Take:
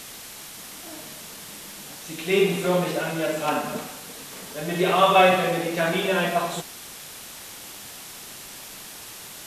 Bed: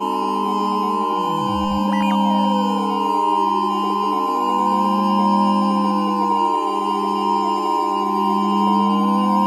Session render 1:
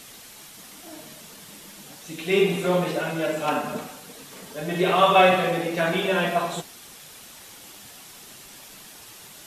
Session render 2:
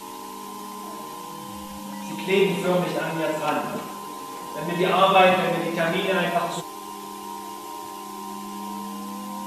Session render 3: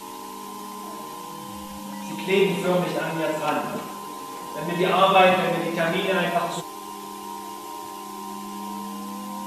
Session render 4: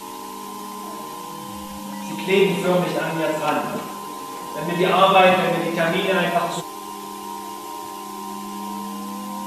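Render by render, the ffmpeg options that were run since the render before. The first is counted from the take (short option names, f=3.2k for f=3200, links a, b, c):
-af "afftdn=nr=6:nf=-41"
-filter_complex "[1:a]volume=-17dB[a];[0:a][a]amix=inputs=2:normalize=0"
-af anull
-af "volume=3dB,alimiter=limit=-3dB:level=0:latency=1"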